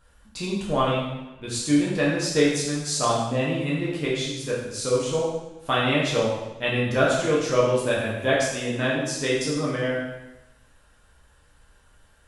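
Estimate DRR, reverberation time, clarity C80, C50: -6.5 dB, 1.0 s, 4.0 dB, 1.0 dB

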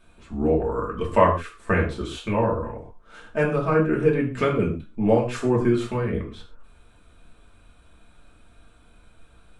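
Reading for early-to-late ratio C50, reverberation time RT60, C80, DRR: 8.5 dB, no single decay rate, 12.5 dB, -3.5 dB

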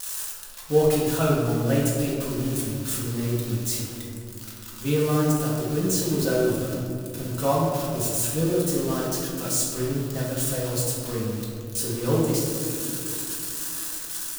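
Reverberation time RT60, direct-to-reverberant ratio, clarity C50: 2.8 s, -6.0 dB, 0.0 dB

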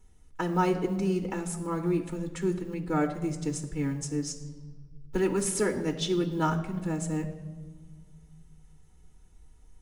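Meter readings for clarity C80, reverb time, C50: 12.5 dB, 1.4 s, 11.0 dB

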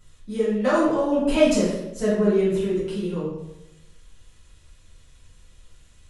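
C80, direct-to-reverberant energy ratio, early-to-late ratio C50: 4.5 dB, -11.0 dB, 1.0 dB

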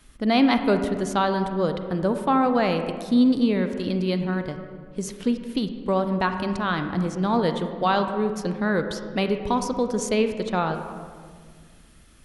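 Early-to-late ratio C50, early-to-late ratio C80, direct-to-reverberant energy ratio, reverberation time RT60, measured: 7.5 dB, 9.0 dB, 7.0 dB, 1.9 s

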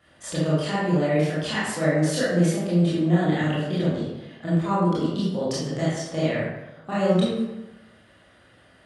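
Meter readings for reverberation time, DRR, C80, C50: 1.0 s, -9.5 dB, 2.0 dB, -1.5 dB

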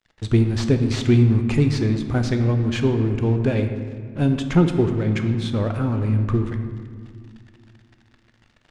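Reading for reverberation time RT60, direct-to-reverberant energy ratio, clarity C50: 2.0 s, 6.0 dB, 7.5 dB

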